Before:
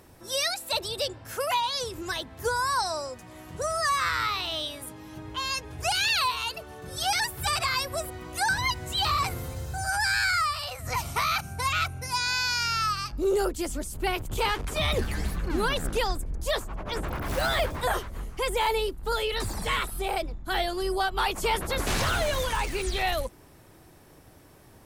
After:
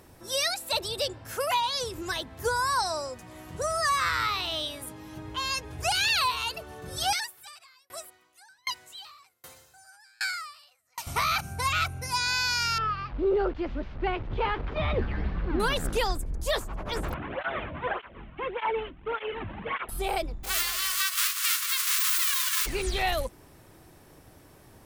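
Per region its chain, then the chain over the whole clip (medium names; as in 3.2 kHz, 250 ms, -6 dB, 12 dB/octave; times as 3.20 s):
7.13–11.07 s: high-pass 1.5 kHz 6 dB/octave + sawtooth tremolo in dB decaying 1.3 Hz, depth 36 dB
12.78–15.60 s: one-bit delta coder 64 kbps, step -36.5 dBFS + Gaussian low-pass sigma 3 samples
17.14–19.89 s: CVSD coder 16 kbps + cancelling through-zero flanger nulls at 1.7 Hz, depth 2.6 ms
20.43–22.65 s: formants flattened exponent 0.1 + brick-wall FIR high-pass 1 kHz + feedback delay 184 ms, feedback 48%, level -8.5 dB
whole clip: none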